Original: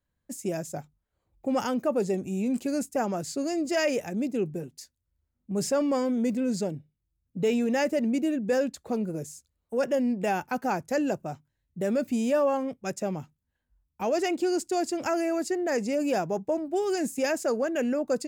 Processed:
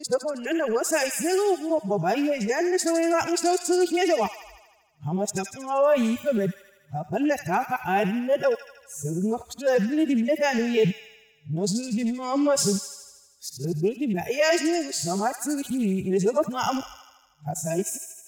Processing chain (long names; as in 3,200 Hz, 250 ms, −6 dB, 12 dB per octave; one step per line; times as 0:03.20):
played backwards from end to start
camcorder AGC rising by 6.1 dB per second
transient designer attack +1 dB, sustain +6 dB
noise reduction from a noise print of the clip's start 13 dB
delay with a high-pass on its return 79 ms, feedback 64%, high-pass 1,600 Hz, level −6 dB
highs frequency-modulated by the lows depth 0.1 ms
level +4.5 dB